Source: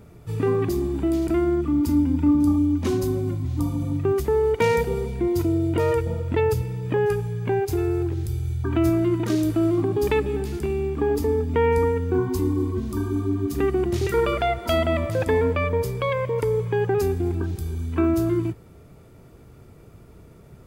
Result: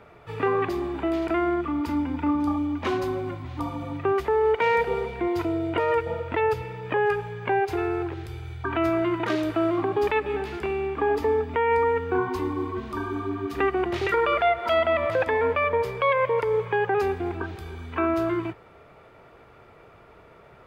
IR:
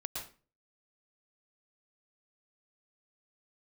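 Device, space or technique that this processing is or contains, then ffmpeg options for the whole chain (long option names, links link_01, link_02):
DJ mixer with the lows and highs turned down: -filter_complex "[0:a]acrossover=split=530 3300:gain=0.112 1 0.0708[link_01][link_02][link_03];[link_01][link_02][link_03]amix=inputs=3:normalize=0,alimiter=limit=-22.5dB:level=0:latency=1:release=114,volume=8.5dB"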